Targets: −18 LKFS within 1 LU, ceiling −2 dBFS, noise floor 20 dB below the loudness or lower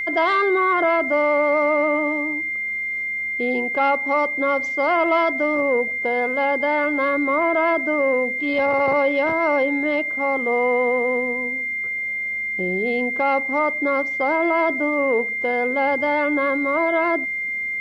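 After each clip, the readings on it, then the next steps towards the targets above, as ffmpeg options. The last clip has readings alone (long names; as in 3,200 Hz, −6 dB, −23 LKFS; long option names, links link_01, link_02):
interfering tone 2,100 Hz; level of the tone −23 dBFS; integrated loudness −20.0 LKFS; sample peak −8.5 dBFS; target loudness −18.0 LKFS
→ -af "bandreject=frequency=2100:width=30"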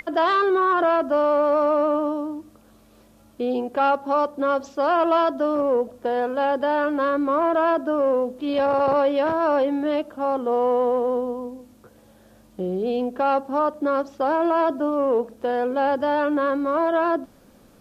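interfering tone none found; integrated loudness −22.0 LKFS; sample peak −10.0 dBFS; target loudness −18.0 LKFS
→ -af "volume=4dB"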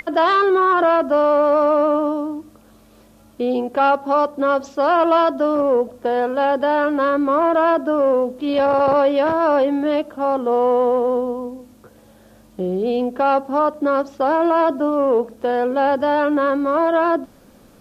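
integrated loudness −18.0 LKFS; sample peak −6.0 dBFS; background noise floor −49 dBFS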